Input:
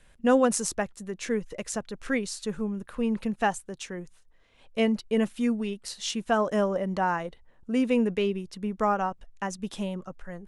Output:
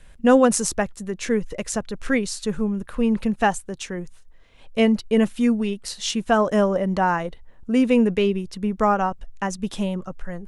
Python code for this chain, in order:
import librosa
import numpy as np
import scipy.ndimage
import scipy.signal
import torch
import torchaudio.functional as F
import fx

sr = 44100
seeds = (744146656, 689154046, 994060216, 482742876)

y = fx.low_shelf(x, sr, hz=110.0, db=7.0)
y = y * librosa.db_to_amplitude(5.5)